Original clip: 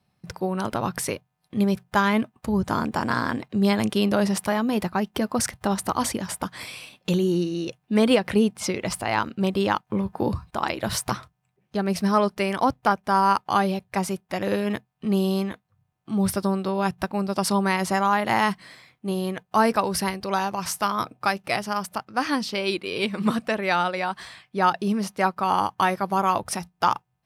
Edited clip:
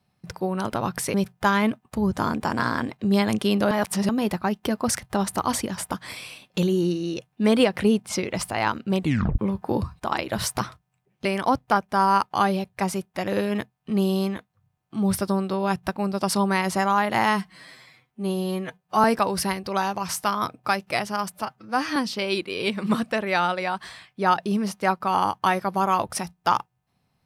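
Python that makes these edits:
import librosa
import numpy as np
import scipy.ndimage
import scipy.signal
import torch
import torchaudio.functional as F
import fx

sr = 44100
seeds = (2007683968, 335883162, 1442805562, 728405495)

y = fx.edit(x, sr, fx.cut(start_s=1.14, length_s=0.51),
    fx.reverse_span(start_s=4.22, length_s=0.38),
    fx.tape_stop(start_s=9.51, length_s=0.38),
    fx.cut(start_s=11.76, length_s=0.64),
    fx.stretch_span(start_s=18.45, length_s=1.16, factor=1.5),
    fx.stretch_span(start_s=21.9, length_s=0.42, factor=1.5), tone=tone)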